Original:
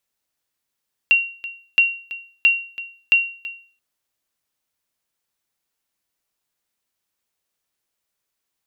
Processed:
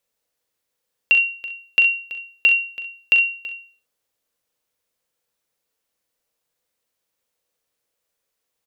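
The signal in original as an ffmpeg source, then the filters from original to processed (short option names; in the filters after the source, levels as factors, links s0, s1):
-f lavfi -i "aevalsrc='0.447*(sin(2*PI*2750*mod(t,0.67))*exp(-6.91*mod(t,0.67)/0.43)+0.15*sin(2*PI*2750*max(mod(t,0.67)-0.33,0))*exp(-6.91*max(mod(t,0.67)-0.33,0)/0.43))':d=2.68:s=44100"
-filter_complex "[0:a]equalizer=f=490:w=2.8:g=10.5,bandreject=f=380:w=12,asplit=2[s0][s1];[s1]aecho=0:1:41|64:0.355|0.299[s2];[s0][s2]amix=inputs=2:normalize=0"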